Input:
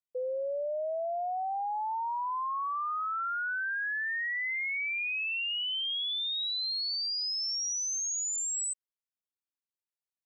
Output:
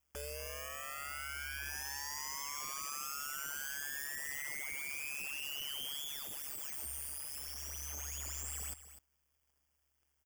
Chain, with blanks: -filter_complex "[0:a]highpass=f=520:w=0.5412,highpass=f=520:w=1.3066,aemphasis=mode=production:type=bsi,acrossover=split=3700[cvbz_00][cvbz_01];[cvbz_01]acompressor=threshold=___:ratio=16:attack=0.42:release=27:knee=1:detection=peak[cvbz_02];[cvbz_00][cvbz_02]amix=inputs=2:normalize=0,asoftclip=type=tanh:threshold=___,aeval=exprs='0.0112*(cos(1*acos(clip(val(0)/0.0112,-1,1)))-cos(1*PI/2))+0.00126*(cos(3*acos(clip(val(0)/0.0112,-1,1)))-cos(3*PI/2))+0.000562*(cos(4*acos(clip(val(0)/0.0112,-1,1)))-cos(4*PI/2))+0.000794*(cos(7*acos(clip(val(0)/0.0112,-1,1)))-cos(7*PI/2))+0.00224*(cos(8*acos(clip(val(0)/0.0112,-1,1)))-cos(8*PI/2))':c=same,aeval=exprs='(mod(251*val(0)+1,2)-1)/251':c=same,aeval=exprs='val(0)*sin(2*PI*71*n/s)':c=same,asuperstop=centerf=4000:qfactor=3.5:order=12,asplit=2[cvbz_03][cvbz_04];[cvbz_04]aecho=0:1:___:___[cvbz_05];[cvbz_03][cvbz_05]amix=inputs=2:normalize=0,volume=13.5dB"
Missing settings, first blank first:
-39dB, -39dB, 251, 0.211